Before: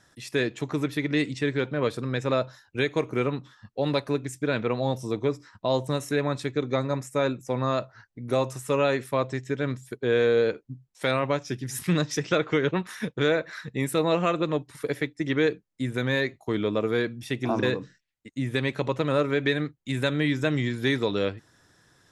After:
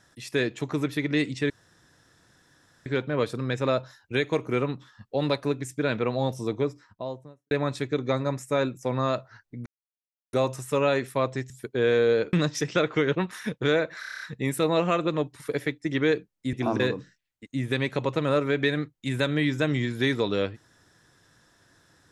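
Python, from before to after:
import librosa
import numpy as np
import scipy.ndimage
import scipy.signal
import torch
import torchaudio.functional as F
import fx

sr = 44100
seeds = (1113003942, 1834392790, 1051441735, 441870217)

y = fx.studio_fade_out(x, sr, start_s=5.09, length_s=1.06)
y = fx.edit(y, sr, fx.insert_room_tone(at_s=1.5, length_s=1.36),
    fx.insert_silence(at_s=8.3, length_s=0.67),
    fx.cut(start_s=9.47, length_s=0.31),
    fx.cut(start_s=10.61, length_s=1.28),
    fx.stutter(start_s=13.56, slice_s=0.03, count=8),
    fx.cut(start_s=15.88, length_s=1.48), tone=tone)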